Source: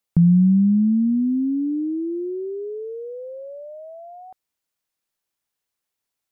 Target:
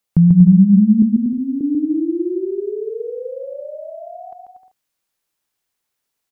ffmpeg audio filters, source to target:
-filter_complex "[0:a]asettb=1/sr,asplit=3[a][b][c];[a]atrim=end=1.024[d];[b]atrim=start=1.02:end=1.61,asetpts=PTS-STARTPTS,afade=t=in:d=0.004:c=qsin,afade=t=out:st=0.586:d=0.004:c=qsin,highpass=340[e];[c]atrim=start=1.606[f];[d][e]acrossfade=d=0.004:c1=hsin:c2=qsin[g];[g][f]acrossfade=d=0.004:c1=qsin:c2=hsin,aecho=1:1:140|238|306.6|354.6|388.2:0.631|0.398|0.251|0.158|0.1,volume=3.5dB"

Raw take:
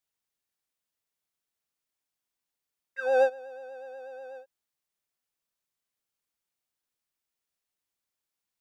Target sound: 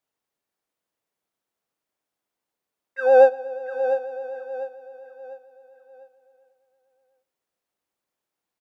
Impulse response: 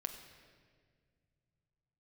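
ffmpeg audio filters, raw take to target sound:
-filter_complex "[0:a]equalizer=f=480:w=0.31:g=12,aecho=1:1:698|1396|2094|2792:0.299|0.11|0.0409|0.0151,asplit=2[a][b];[1:a]atrim=start_sample=2205[c];[b][c]afir=irnorm=-1:irlink=0,volume=-11.5dB[d];[a][d]amix=inputs=2:normalize=0,volume=-3.5dB"

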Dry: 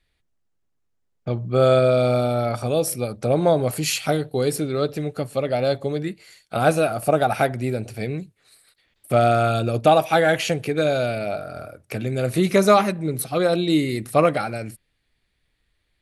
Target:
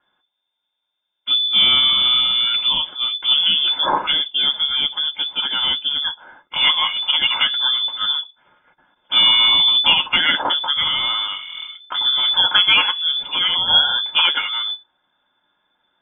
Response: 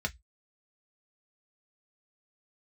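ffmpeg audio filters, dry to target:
-filter_complex "[0:a]asettb=1/sr,asplit=3[a][b][c];[a]atrim=end=9.924[d];[b]atrim=start=9.92:end=10.45,asetpts=PTS-STARTPTS,afade=t=in:d=0.004:c=qsin,afade=t=out:st=0.526:d=0.004:c=qsin,agate=range=-12dB:threshold=-22dB:ratio=16:detection=peak[e];[c]atrim=start=10.446[f];[d][e]acrossfade=d=0.004:c1=hsin:c2=qsin[g];[g][f]acrossfade=d=0.004:c1=qsin:c2=hsin,equalizer=f=2.7k:t=o:w=1.5:g=12[h];[1:a]atrim=start_sample=2205,asetrate=66150,aresample=44100[i];[h][i]afir=irnorm=-1:irlink=0,lowpass=f=3.1k:t=q:w=0.5098,lowpass=f=3.1k:t=q:w=0.6013,lowpass=f=3.1k:t=q:w=0.9,lowpass=f=3.1k:t=q:w=2.563,afreqshift=-3600,volume=-1.5dB"

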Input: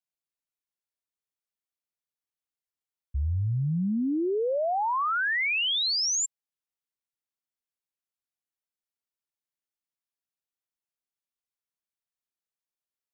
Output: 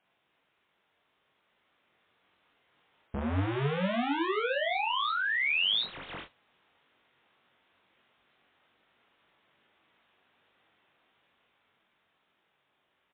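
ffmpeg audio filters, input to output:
-filter_complex "[0:a]lowshelf=f=280:g=11,alimiter=limit=-17dB:level=0:latency=1:release=66,dynaudnorm=f=300:g=13:m=5dB,asplit=2[a][b];[b]highpass=f=720:p=1,volume=39dB,asoftclip=type=tanh:threshold=-12dB[c];[a][c]amix=inputs=2:normalize=0,lowpass=f=2.1k:p=1,volume=-6dB,aeval=exprs='0.1*(abs(mod(val(0)/0.1+3,4)-2)-1)':c=same,aecho=1:1:21|43:0.631|0.531,volume=-5.5dB" -ar 8000 -c:a libmp3lame -b:a 24k

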